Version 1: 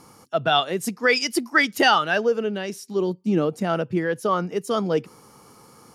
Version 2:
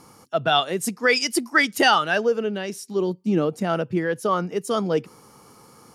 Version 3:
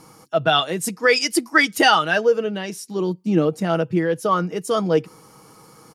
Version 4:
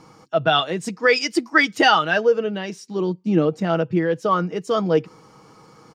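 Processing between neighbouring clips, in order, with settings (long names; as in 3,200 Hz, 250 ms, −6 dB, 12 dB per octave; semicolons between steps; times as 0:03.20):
dynamic equaliser 8,800 Hz, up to +5 dB, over −45 dBFS, Q 1.4
comb filter 6.3 ms, depth 42%; level +1.5 dB
moving average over 4 samples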